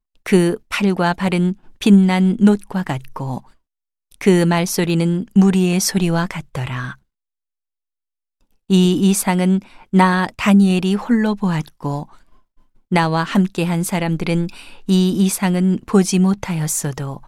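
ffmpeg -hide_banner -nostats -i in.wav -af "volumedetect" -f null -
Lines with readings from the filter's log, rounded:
mean_volume: -17.5 dB
max_volume: -2.1 dB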